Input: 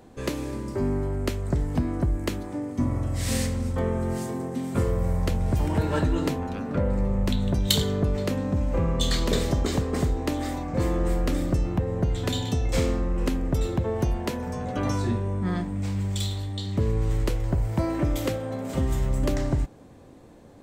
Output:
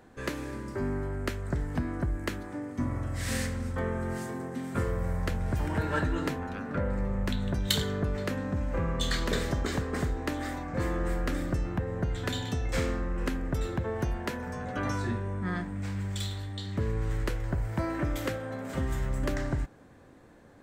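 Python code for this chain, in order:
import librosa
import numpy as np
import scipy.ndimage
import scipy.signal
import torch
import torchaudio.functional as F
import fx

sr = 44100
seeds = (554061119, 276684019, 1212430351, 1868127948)

y = fx.peak_eq(x, sr, hz=1600.0, db=10.0, octaves=0.87)
y = y * librosa.db_to_amplitude(-6.0)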